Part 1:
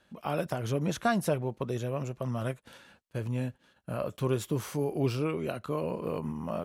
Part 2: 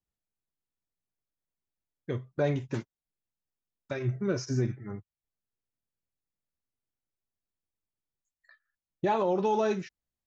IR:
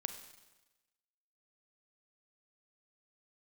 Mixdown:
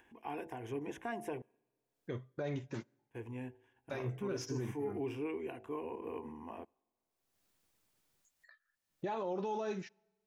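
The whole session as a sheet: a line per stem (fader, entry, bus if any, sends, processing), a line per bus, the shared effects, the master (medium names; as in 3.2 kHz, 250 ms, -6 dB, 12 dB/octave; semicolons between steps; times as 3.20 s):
-4.5 dB, 0.00 s, muted 1.42–2.99 s, send -20.5 dB, low-pass 2.6 kHz 6 dB/octave; static phaser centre 870 Hz, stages 8; de-hum 54.15 Hz, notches 16
-5.5 dB, 0.00 s, send -23 dB, none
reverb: on, RT60 1.1 s, pre-delay 32 ms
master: bass shelf 99 Hz -9.5 dB; upward compressor, threshold -58 dBFS; peak limiter -29.5 dBFS, peak gain reduction 8 dB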